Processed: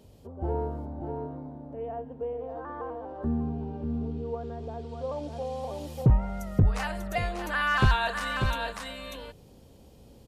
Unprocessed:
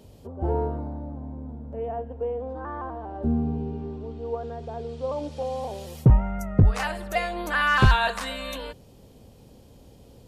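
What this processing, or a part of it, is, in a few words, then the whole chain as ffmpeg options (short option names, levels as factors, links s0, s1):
ducked delay: -filter_complex "[0:a]asplit=3[s0][s1][s2];[s1]adelay=592,volume=0.794[s3];[s2]apad=whole_len=479238[s4];[s3][s4]sidechaincompress=threshold=0.0178:ratio=8:attack=16:release=101[s5];[s0][s5]amix=inputs=2:normalize=0,volume=0.596"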